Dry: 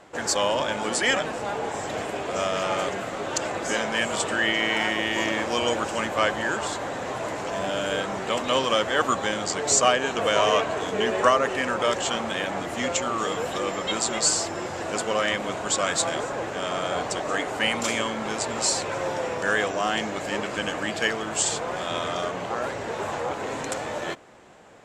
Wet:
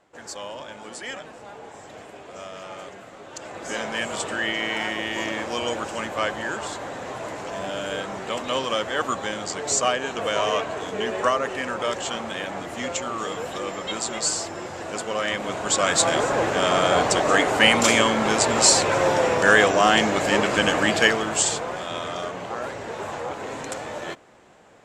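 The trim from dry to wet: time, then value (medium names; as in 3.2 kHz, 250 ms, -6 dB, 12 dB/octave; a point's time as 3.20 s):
3.31 s -12 dB
3.81 s -2.5 dB
15.11 s -2.5 dB
16.37 s +8 dB
20.93 s +8 dB
21.87 s -2 dB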